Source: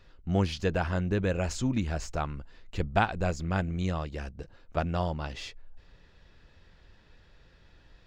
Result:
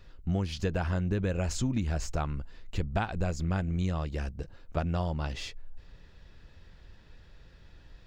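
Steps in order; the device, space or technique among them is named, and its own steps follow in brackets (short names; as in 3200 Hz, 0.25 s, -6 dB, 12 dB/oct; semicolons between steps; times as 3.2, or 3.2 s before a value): ASMR close-microphone chain (low shelf 220 Hz +5.5 dB; compressor 6:1, threshold -25 dBFS, peak gain reduction 9 dB; high shelf 7200 Hz +5 dB)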